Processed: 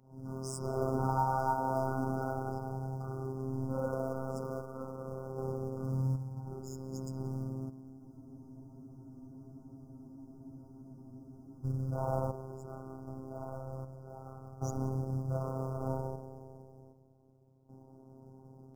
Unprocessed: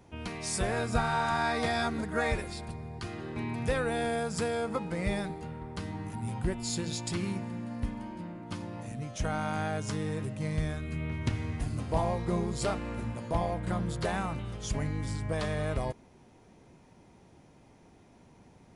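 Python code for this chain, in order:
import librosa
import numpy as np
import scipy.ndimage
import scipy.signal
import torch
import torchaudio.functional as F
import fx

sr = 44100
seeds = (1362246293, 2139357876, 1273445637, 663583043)

p1 = fx.envelope_sharpen(x, sr, power=2.0)
p2 = scipy.signal.sosfilt(scipy.signal.butter(2, 74.0, 'highpass', fs=sr, output='sos'), p1)
p3 = p2 + fx.echo_filtered(p2, sr, ms=184, feedback_pct=71, hz=1600.0, wet_db=-8.0, dry=0)
p4 = 10.0 ** (-32.5 / 20.0) * np.tanh(p3 / 10.0 ** (-32.5 / 20.0))
p5 = fx.peak_eq(p4, sr, hz=150.0, db=-4.0, octaves=0.38)
p6 = fx.rev_spring(p5, sr, rt60_s=1.1, pass_ms=(31, 51), chirp_ms=80, drr_db=-8.5)
p7 = fx.quant_float(p6, sr, bits=2)
p8 = p6 + (p7 * 10.0 ** (-6.0 / 20.0))
p9 = fx.tremolo_random(p8, sr, seeds[0], hz=1.3, depth_pct=85)
p10 = fx.brickwall_bandstop(p9, sr, low_hz=1500.0, high_hz=4800.0)
p11 = fx.robotise(p10, sr, hz=132.0)
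p12 = fx.spec_freeze(p11, sr, seeds[1], at_s=8.02, hold_s=3.62)
y = p12 * 10.0 ** (-5.0 / 20.0)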